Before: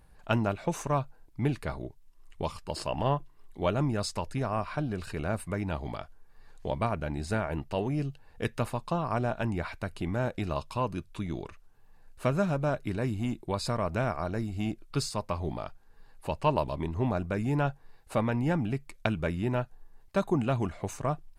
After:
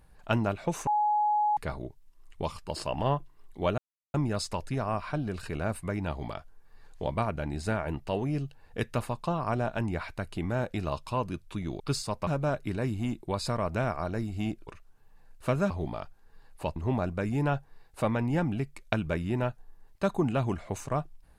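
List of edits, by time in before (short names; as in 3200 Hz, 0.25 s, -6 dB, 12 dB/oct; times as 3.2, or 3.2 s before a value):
0.87–1.57 bleep 840 Hz -22.5 dBFS
3.78 insert silence 0.36 s
11.44–12.47 swap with 14.87–15.34
16.4–16.89 cut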